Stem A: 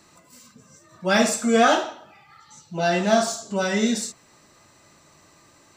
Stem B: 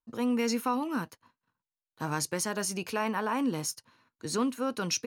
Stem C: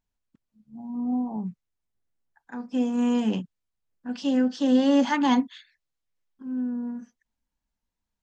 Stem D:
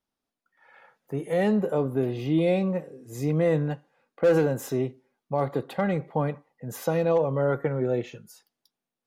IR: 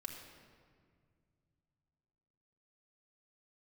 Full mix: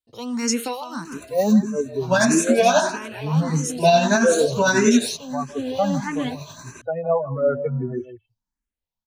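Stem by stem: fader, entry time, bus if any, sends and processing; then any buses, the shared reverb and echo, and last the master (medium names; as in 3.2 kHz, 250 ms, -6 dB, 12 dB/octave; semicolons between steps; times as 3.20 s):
+1.5 dB, 1.05 s, no send, no echo send, rippled EQ curve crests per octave 1.5, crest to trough 13 dB; compression, threshold -19 dBFS, peak gain reduction 10 dB; tremolo 11 Hz, depth 43%
+0.5 dB, 0.00 s, no send, echo send -17.5 dB, high-order bell 5.2 kHz +9 dB; auto duck -12 dB, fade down 0.65 s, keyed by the fourth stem
-16.0 dB, 0.95 s, no send, no echo send, none
-1.0 dB, 0.00 s, no send, echo send -13.5 dB, expander on every frequency bin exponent 3; low-pass 1.7 kHz 24 dB/octave; band-stop 920 Hz, Q 5.9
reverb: none
echo: delay 156 ms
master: level rider gain up to 14 dB; barber-pole phaser +1.6 Hz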